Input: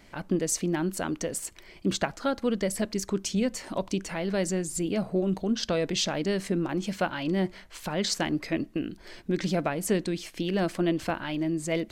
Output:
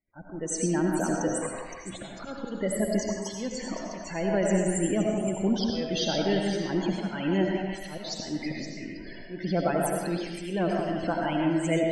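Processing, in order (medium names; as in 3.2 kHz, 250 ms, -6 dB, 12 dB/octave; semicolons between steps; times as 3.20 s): gate -49 dBFS, range -38 dB; slow attack 258 ms; in parallel at -2 dB: compression, threshold -45 dBFS, peak gain reduction 21 dB; 1.42–1.96 s: on the sum: sample-rate reducer 6.8 kHz, jitter 0%; loudest bins only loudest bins 32; on a send: repeats whose band climbs or falls 172 ms, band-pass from 830 Hz, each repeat 1.4 oct, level -2 dB; on the sum: algorithmic reverb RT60 1.1 s, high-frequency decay 0.75×, pre-delay 45 ms, DRR 0.5 dB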